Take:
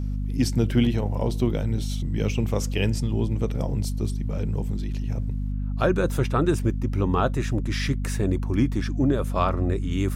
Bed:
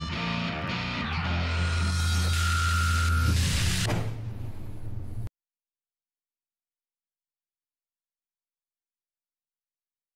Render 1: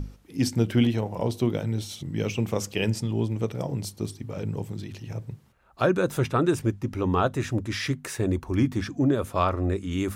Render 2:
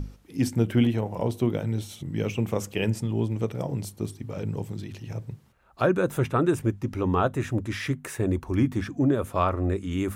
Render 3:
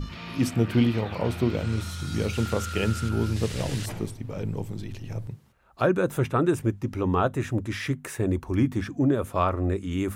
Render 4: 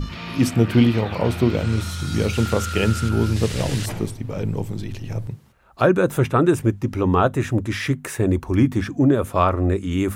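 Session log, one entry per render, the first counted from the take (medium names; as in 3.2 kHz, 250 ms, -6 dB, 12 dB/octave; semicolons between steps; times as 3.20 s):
hum notches 50/100/150/200/250 Hz
dynamic bell 4.8 kHz, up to -8 dB, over -52 dBFS, Q 1.3
add bed -8.5 dB
trim +6 dB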